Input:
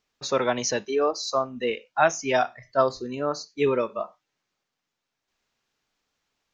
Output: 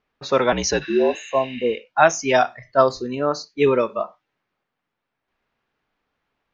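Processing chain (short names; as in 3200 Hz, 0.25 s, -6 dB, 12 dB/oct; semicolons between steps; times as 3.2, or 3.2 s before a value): 0.84–1.72 spectral repair 1100–6300 Hz both; low-pass opened by the level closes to 2200 Hz, open at -18 dBFS; 0.52–1.15 frequency shift -57 Hz; gain +5.5 dB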